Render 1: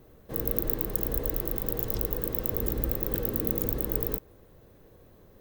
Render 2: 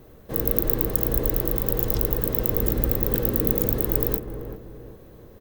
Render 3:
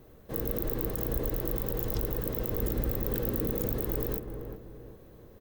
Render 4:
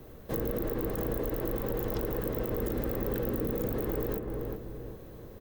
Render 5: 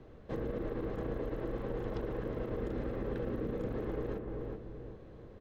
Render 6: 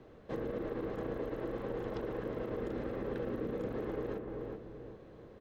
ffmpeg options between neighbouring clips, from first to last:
-filter_complex "[0:a]asplit=2[a][b];[b]adelay=384,lowpass=f=1.4k:p=1,volume=-7.5dB,asplit=2[c][d];[d]adelay=384,lowpass=f=1.4k:p=1,volume=0.41,asplit=2[e][f];[f]adelay=384,lowpass=f=1.4k:p=1,volume=0.41,asplit=2[g][h];[h]adelay=384,lowpass=f=1.4k:p=1,volume=0.41,asplit=2[i][j];[j]adelay=384,lowpass=f=1.4k:p=1,volume=0.41[k];[a][c][e][g][i][k]amix=inputs=6:normalize=0,volume=6dB"
-af "alimiter=limit=-10.5dB:level=0:latency=1:release=22,volume=-5.5dB"
-filter_complex "[0:a]acrossover=split=180|2700[a][b][c];[a]acompressor=threshold=-41dB:ratio=4[d];[b]acompressor=threshold=-36dB:ratio=4[e];[c]acompressor=threshold=-43dB:ratio=4[f];[d][e][f]amix=inputs=3:normalize=0,volume=5.5dB"
-af "lowpass=3.5k,volume=-4.5dB"
-af "lowshelf=f=110:g=-11,volume=1dB"

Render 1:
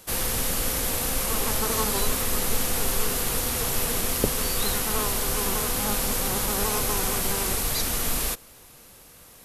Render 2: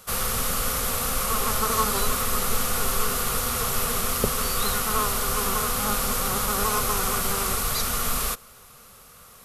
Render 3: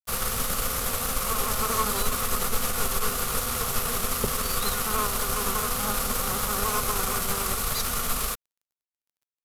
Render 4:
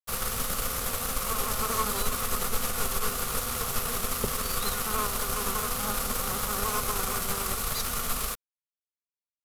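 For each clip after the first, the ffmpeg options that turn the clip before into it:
-af "superequalizer=6b=0.316:10b=2.51"
-af "aeval=exprs='sgn(val(0))*max(abs(val(0))-0.0119,0)':c=same,aeval=exprs='(tanh(7.94*val(0)+0.4)-tanh(0.4))/7.94':c=same,volume=1.5dB"
-af "aeval=exprs='sgn(val(0))*max(abs(val(0))-0.00596,0)':c=same,volume=-2dB"

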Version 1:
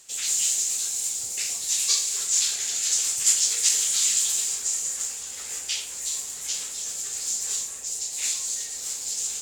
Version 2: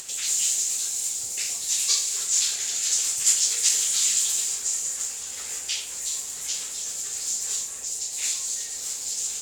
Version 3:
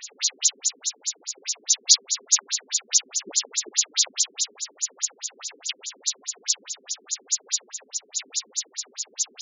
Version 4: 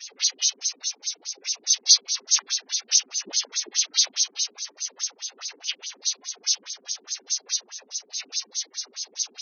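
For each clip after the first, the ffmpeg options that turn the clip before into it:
-af "acompressor=mode=upward:threshold=-29dB:ratio=2.5"
-af "lowpass=f=7.5k:t=q:w=1.9,aeval=exprs='(mod(1.88*val(0)+1,2)-1)/1.88':c=same,afftfilt=real='re*between(b*sr/1024,280*pow(5200/280,0.5+0.5*sin(2*PI*4.8*pts/sr))/1.41,280*pow(5200/280,0.5+0.5*sin(2*PI*4.8*pts/sr))*1.41)':imag='im*between(b*sr/1024,280*pow(5200/280,0.5+0.5*sin(2*PI*4.8*pts/sr))/1.41,280*pow(5200/280,0.5+0.5*sin(2*PI*4.8*pts/sr))*1.41)':win_size=1024:overlap=0.75,volume=5.5dB"
-af "adynamicequalizer=threshold=0.00158:dfrequency=460:dqfactor=1.3:tfrequency=460:tqfactor=1.3:attack=5:release=100:ratio=0.375:range=2:mode=cutabove:tftype=bell" -ar 16000 -c:a libvorbis -b:a 16k

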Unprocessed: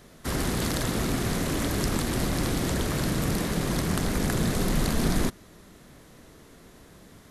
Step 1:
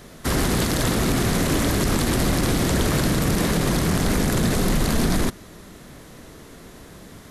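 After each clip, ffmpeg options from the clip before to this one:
-af "alimiter=limit=-19.5dB:level=0:latency=1:release=29,volume=8dB"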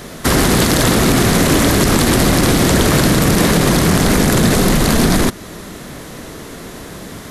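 -filter_complex "[0:a]asplit=2[a][b];[b]acompressor=threshold=-27dB:ratio=6,volume=-2dB[c];[a][c]amix=inputs=2:normalize=0,lowshelf=f=97:g=-5.5,aeval=exprs='0.355*(cos(1*acos(clip(val(0)/0.355,-1,1)))-cos(1*PI/2))+0.00251*(cos(2*acos(clip(val(0)/0.355,-1,1)))-cos(2*PI/2))':c=same,volume=7.5dB"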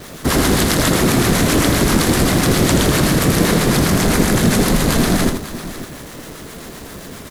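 -filter_complex "[0:a]acrossover=split=720[a][b];[a]aeval=exprs='val(0)*(1-0.7/2+0.7/2*cos(2*PI*7.6*n/s))':c=same[c];[b]aeval=exprs='val(0)*(1-0.7/2-0.7/2*cos(2*PI*7.6*n/s))':c=same[d];[c][d]amix=inputs=2:normalize=0,acrusher=bits=7:dc=4:mix=0:aa=0.000001,aecho=1:1:81|551:0.501|0.211"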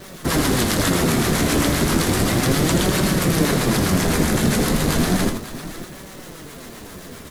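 -af "flanger=delay=5.2:depth=8.7:regen=53:speed=0.33:shape=sinusoidal"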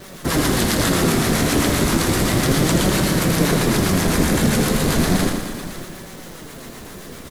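-af "aecho=1:1:117|234|351|468|585|702|819:0.398|0.231|0.134|0.0777|0.0451|0.0261|0.0152"

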